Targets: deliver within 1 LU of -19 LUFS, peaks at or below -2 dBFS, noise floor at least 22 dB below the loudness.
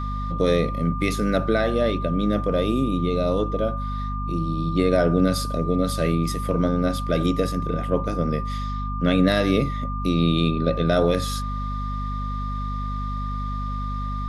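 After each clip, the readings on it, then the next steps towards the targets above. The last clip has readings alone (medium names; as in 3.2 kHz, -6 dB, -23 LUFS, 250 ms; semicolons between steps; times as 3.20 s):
hum 50 Hz; highest harmonic 250 Hz; hum level -26 dBFS; steady tone 1.2 kHz; tone level -31 dBFS; loudness -23.5 LUFS; peak level -5.0 dBFS; loudness target -19.0 LUFS
-> hum notches 50/100/150/200/250 Hz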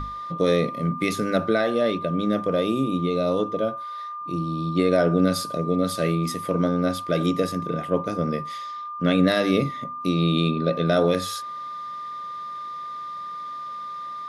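hum not found; steady tone 1.2 kHz; tone level -31 dBFS
-> band-stop 1.2 kHz, Q 30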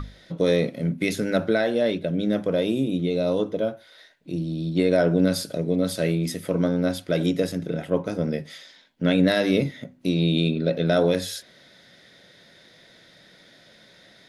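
steady tone not found; loudness -24.0 LUFS; peak level -6.0 dBFS; loudness target -19.0 LUFS
-> trim +5 dB; peak limiter -2 dBFS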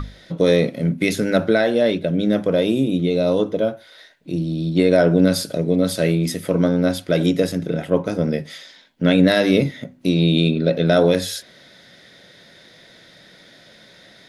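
loudness -19.0 LUFS; peak level -2.0 dBFS; noise floor -49 dBFS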